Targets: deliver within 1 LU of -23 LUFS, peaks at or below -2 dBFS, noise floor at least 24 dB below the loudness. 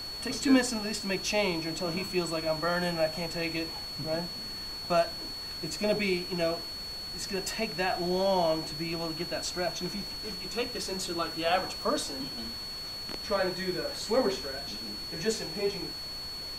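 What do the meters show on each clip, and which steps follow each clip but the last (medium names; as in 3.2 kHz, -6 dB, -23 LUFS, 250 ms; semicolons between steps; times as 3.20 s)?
steady tone 4.4 kHz; tone level -37 dBFS; noise floor -39 dBFS; noise floor target -55 dBFS; loudness -31.0 LUFS; peak level -11.5 dBFS; loudness target -23.0 LUFS
-> band-stop 4.4 kHz, Q 30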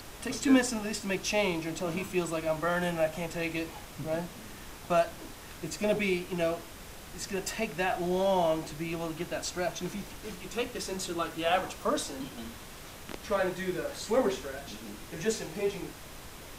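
steady tone not found; noise floor -47 dBFS; noise floor target -56 dBFS
-> noise print and reduce 9 dB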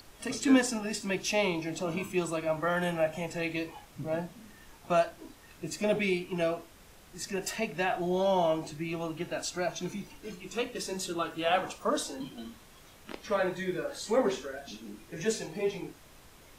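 noise floor -55 dBFS; noise floor target -56 dBFS
-> noise print and reduce 6 dB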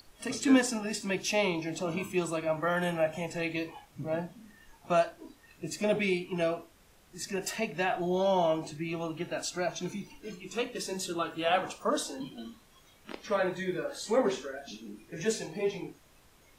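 noise floor -61 dBFS; loudness -31.5 LUFS; peak level -12.0 dBFS; loudness target -23.0 LUFS
-> trim +8.5 dB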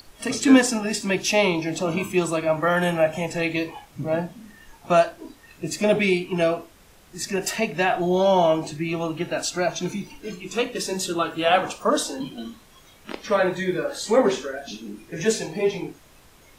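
loudness -23.0 LUFS; peak level -3.5 dBFS; noise floor -52 dBFS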